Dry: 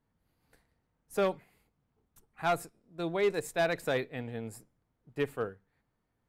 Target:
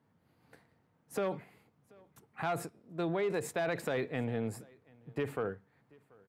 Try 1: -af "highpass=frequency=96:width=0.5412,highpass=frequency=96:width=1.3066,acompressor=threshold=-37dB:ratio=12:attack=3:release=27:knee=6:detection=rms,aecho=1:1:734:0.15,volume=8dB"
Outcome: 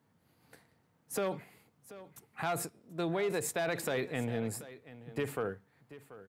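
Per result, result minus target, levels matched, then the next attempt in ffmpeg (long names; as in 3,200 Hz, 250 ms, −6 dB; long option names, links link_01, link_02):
8,000 Hz band +7.5 dB; echo-to-direct +10 dB
-af "highpass=frequency=96:width=0.5412,highpass=frequency=96:width=1.3066,highshelf=frequency=4100:gain=-10.5,acompressor=threshold=-37dB:ratio=12:attack=3:release=27:knee=6:detection=rms,aecho=1:1:734:0.15,volume=8dB"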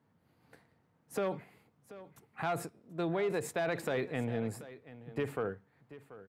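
echo-to-direct +10 dB
-af "highpass=frequency=96:width=0.5412,highpass=frequency=96:width=1.3066,highshelf=frequency=4100:gain=-10.5,acompressor=threshold=-37dB:ratio=12:attack=3:release=27:knee=6:detection=rms,aecho=1:1:734:0.0473,volume=8dB"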